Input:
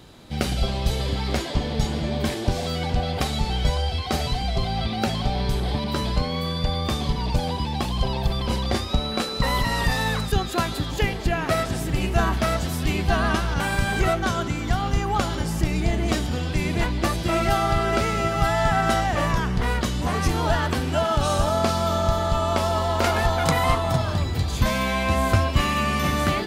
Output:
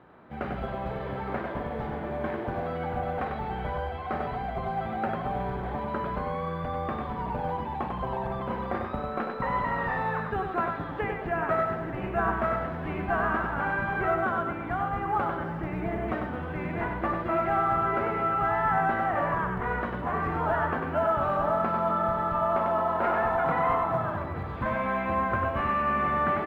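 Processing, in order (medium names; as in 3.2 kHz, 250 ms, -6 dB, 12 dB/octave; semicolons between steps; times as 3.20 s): tracing distortion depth 0.17 ms; tilt EQ +2.5 dB/octave; de-hum 49.78 Hz, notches 10; on a send: multi-tap echo 52/97/229 ms -16.5/-5.5/-15.5 dB; on the sum: saturation -13.5 dBFS, distortion -20 dB; low-pass 1.6 kHz 24 dB/octave; bass shelf 80 Hz -8 dB; short-mantissa float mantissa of 6-bit; trim -1 dB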